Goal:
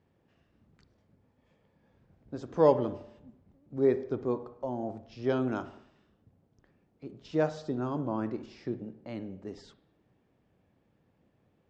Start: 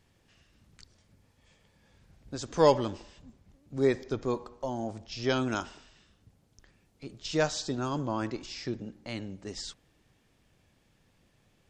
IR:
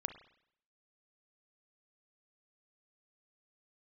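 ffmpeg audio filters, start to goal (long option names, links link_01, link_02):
-filter_complex "[0:a]bandpass=frequency=520:width_type=q:width=0.58:csg=0,asplit=2[link_01][link_02];[1:a]atrim=start_sample=2205,lowshelf=frequency=310:gain=12[link_03];[link_02][link_03]afir=irnorm=-1:irlink=0,volume=3.5dB[link_04];[link_01][link_04]amix=inputs=2:normalize=0,volume=-9dB"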